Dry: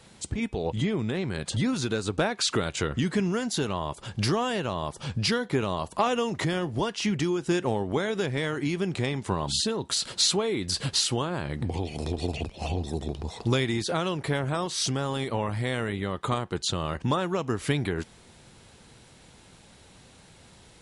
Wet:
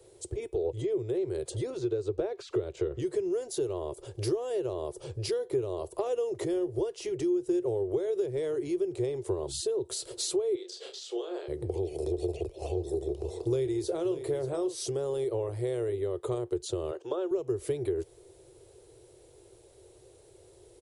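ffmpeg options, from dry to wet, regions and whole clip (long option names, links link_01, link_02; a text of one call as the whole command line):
ffmpeg -i in.wav -filter_complex "[0:a]asettb=1/sr,asplit=3[link_01][link_02][link_03];[link_01]atrim=end=1.704[link_04];[link_02]atrim=start=1.7:end=3,asetpts=PTS-STARTPTS,afade=type=in:duration=0.004:curve=qsin,afade=type=out:start_time=1.296:duration=0.004:curve=qsin,lowpass=5000,acrossover=split=2600[link_05][link_06];[link_06]acompressor=threshold=-37dB:ratio=4:attack=1:release=60[link_07];[link_05][link_07]amix=inputs=2:normalize=0[link_08];[link_03]atrim=start=2.996[link_09];[link_04][link_08]acrossfade=duration=0.004:curve1=hsin:curve2=qsin[link_10];[link_10][link_09]acrossfade=duration=0.004:curve1=qsin:curve2=hsin,asettb=1/sr,asplit=3[link_11][link_12][link_13];[link_11]atrim=end=10.554[link_14];[link_12]atrim=start=10.55:end=11.48,asetpts=PTS-STARTPTS,afade=type=in:duration=0.004:curve=qsin,afade=type=out:start_time=0.926:duration=0.004:curve=qsin,highpass=frequency=460:width=0.5412,highpass=frequency=460:width=1.3066,equalizer=frequency=580:width_type=q:width=4:gain=-6,equalizer=frequency=970:width_type=q:width=4:gain=-7,equalizer=frequency=3400:width_type=q:width=4:gain=8,lowpass=frequency=6700:width=0.5412,lowpass=frequency=6700:width=1.3066,acompressor=threshold=-29dB:ratio=12:attack=3.2:release=140:knee=1:detection=peak,asplit=2[link_15][link_16];[link_16]adelay=31,volume=-4.5dB[link_17];[link_15][link_17]amix=inputs=2:normalize=0,atrim=end_sample=41013[link_18];[link_13]atrim=start=11.476[link_19];[link_14][link_18]acrossfade=duration=0.004:curve1=hsin:curve2=qsin[link_20];[link_20][link_19]acrossfade=duration=0.004:curve1=qsin:curve2=hsin,asettb=1/sr,asplit=3[link_21][link_22][link_23];[link_21]atrim=end=12.584[link_24];[link_22]atrim=start=12.58:end=14.75,asetpts=PTS-STARTPTS,afade=type=in:duration=0.004:curve=qsin,afade=type=out:start_time=2.166:duration=0.004:curve=qsin,asplit=2[link_25][link_26];[link_26]adelay=30,volume=-14dB[link_27];[link_25][link_27]amix=inputs=2:normalize=0,atrim=end_sample=95697,aecho=1:1:585:0.211,atrim=end_sample=95697[link_28];[link_23]atrim=start=14.746[link_29];[link_24][link_28]acrossfade=duration=0.004:curve1=hsin:curve2=qsin[link_30];[link_30][link_29]acrossfade=duration=0.004:curve1=qsin:curve2=hsin,asettb=1/sr,asplit=3[link_31][link_32][link_33];[link_31]atrim=end=16.914[link_34];[link_32]atrim=start=16.91:end=17.31,asetpts=PTS-STARTPTS,afade=type=in:duration=0.004:curve=qsin,afade=type=out:start_time=0.396:duration=0.004:curve=qsin,acrossover=split=3300[link_35][link_36];[link_36]acompressor=threshold=-54dB:ratio=4:attack=1:release=60[link_37];[link_35][link_37]amix=inputs=2:normalize=0,highpass=390,equalizer=frequency=1400:width_type=q:width=4:gain=4,equalizer=frequency=2000:width_type=q:width=4:gain=-8,equalizer=frequency=3200:width_type=q:width=4:gain=7,equalizer=frequency=6300:width_type=q:width=4:gain=3,lowpass=frequency=8400:width=0.5412,lowpass=frequency=8400:width=1.3066[link_38];[link_33]atrim=start=17.306[link_39];[link_34][link_38]acrossfade=duration=0.004:curve1=hsin:curve2=qsin[link_40];[link_40][link_39]acrossfade=duration=0.004:curve1=qsin:curve2=hsin,firequalizer=gain_entry='entry(120,0);entry(210,-28);entry(360,15);entry(830,-5);entry(1500,-11);entry(10000,4)':delay=0.05:min_phase=1,acrossover=split=160[link_41][link_42];[link_42]acompressor=threshold=-23dB:ratio=3[link_43];[link_41][link_43]amix=inputs=2:normalize=0,volume=-5.5dB" out.wav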